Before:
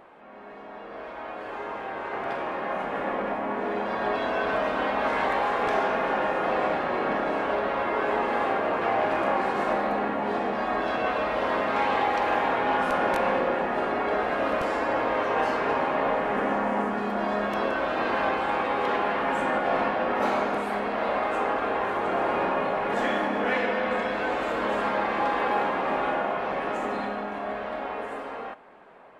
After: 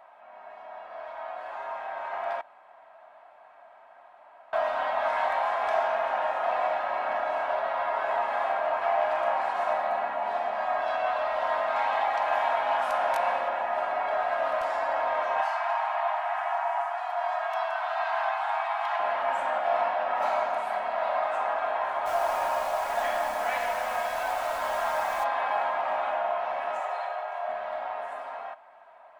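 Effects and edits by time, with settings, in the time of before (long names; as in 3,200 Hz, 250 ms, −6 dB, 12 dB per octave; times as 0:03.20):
0:02.41–0:04.53: fill with room tone
0:12.33–0:13.49: high-shelf EQ 4,800 Hz +5.5 dB
0:15.41–0:19.00: linear-phase brick-wall high-pass 630 Hz
0:22.05–0:25.23: background noise pink −38 dBFS
0:26.80–0:27.49: Butterworth high-pass 410 Hz 72 dB per octave
whole clip: low shelf with overshoot 510 Hz −12 dB, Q 3; comb filter 3.1 ms, depth 44%; level −5.5 dB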